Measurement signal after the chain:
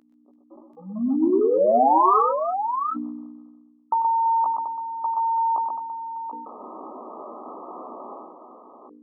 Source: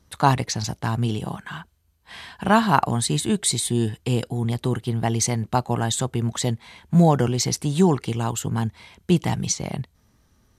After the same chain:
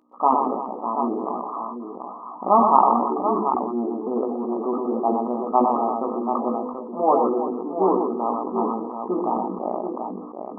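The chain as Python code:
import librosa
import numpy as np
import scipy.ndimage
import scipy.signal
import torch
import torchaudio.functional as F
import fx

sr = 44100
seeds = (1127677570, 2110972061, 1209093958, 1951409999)

p1 = fx.hum_notches(x, sr, base_hz=50, count=10)
p2 = 10.0 ** (-20.5 / 20.0) * (np.abs((p1 / 10.0 ** (-20.5 / 20.0) + 3.0) % 4.0 - 2.0) - 1.0)
p3 = p1 + (p2 * librosa.db_to_amplitude(-8.0))
p4 = fx.add_hum(p3, sr, base_hz=60, snr_db=28)
p5 = fx.brickwall_bandpass(p4, sr, low_hz=210.0, high_hz=1300.0)
p6 = fx.rider(p5, sr, range_db=4, speed_s=2.0)
p7 = fx.low_shelf(p6, sr, hz=450.0, db=-7.5)
p8 = fx.doubler(p7, sr, ms=16.0, db=-6.0)
p9 = fx.echo_multitap(p8, sr, ms=(96, 97, 124, 336, 734), db=(-16.5, -17.0, -6.0, -14.0, -7.0))
p10 = fx.sustainer(p9, sr, db_per_s=38.0)
y = p10 * librosa.db_to_amplitude(2.0)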